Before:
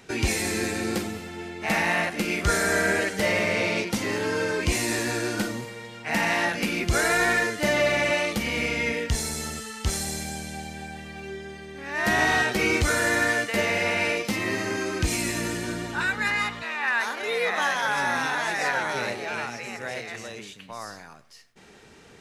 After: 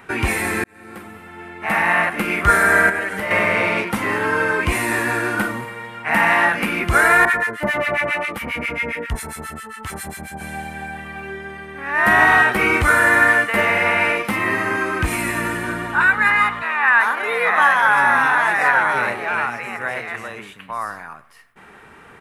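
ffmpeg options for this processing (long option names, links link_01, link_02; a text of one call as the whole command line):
ffmpeg -i in.wav -filter_complex "[0:a]asettb=1/sr,asplit=3[link_01][link_02][link_03];[link_01]atrim=end=2.894[link_04];[link_02]atrim=start=2.89:end=3.31,asetpts=PTS-STARTPTS,afade=type=in:duration=0.004:curve=qsin,afade=type=out:start_time=0.416:duration=0.004:curve=qsin,acompressor=threshold=-27dB:ratio=6:attack=3.2:release=140:knee=1:detection=peak[link_05];[link_03]atrim=start=3.306[link_06];[link_04][link_05]acrossfade=duration=0.004:curve1=hsin:curve2=qsin[link_07];[link_07][link_06]acrossfade=duration=0.004:curve1=qsin:curve2=hsin,asettb=1/sr,asplit=3[link_08][link_09][link_10];[link_08]atrim=end=7.254[link_11];[link_09]atrim=start=7.25:end=10.41,asetpts=PTS-STARTPTS,afade=type=in:duration=0.004:curve=qsin,afade=type=out:start_time=3.156:duration=0.004:curve=qsin,acrossover=split=1200[link_12][link_13];[link_12]aeval=exprs='val(0)*(1-1/2+1/2*cos(2*PI*7.4*n/s))':channel_layout=same[link_14];[link_13]aeval=exprs='val(0)*(1-1/2-1/2*cos(2*PI*7.4*n/s))':channel_layout=same[link_15];[link_14][link_15]amix=inputs=2:normalize=0[link_16];[link_10]atrim=start=10.406[link_17];[link_11][link_16]acrossfade=duration=0.004:curve1=hsin:curve2=qsin[link_18];[link_18][link_17]acrossfade=duration=0.004:curve1=qsin:curve2=hsin,asplit=2[link_19][link_20];[link_19]atrim=end=0.64,asetpts=PTS-STARTPTS,afade=type=out:start_time=0.636:duration=0.004:curve=hsin[link_21];[link_20]atrim=start=0.64,asetpts=PTS-STARTPTS,afade=type=in:duration=1.57[link_22];[link_21][link_22]concat=n=2:v=0:a=1,firequalizer=gain_entry='entry(520,0);entry(1100,11);entry(4400,-10);entry(6300,-12);entry(9500,1)':delay=0.05:min_phase=1,volume=3.5dB" out.wav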